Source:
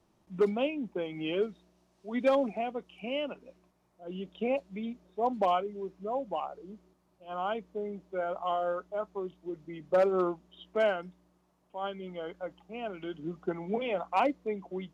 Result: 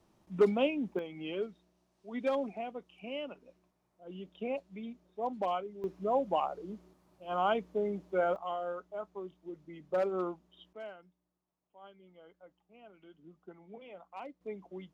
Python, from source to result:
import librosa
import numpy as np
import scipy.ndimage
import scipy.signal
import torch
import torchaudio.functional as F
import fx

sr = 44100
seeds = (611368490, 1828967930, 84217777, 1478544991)

y = fx.gain(x, sr, db=fx.steps((0.0, 1.0), (0.99, -6.0), (5.84, 3.5), (8.36, -6.0), (10.73, -18.0), (14.41, -7.5)))